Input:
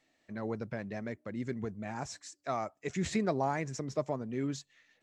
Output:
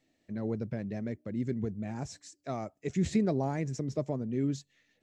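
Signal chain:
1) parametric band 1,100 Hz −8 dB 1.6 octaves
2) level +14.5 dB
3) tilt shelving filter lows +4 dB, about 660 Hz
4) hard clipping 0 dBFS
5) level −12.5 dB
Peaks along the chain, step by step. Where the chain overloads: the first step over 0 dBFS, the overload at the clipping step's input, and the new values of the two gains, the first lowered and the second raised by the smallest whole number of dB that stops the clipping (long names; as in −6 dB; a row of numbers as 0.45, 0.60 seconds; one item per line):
−20.5, −6.0, −4.5, −4.5, −17.0 dBFS
no step passes full scale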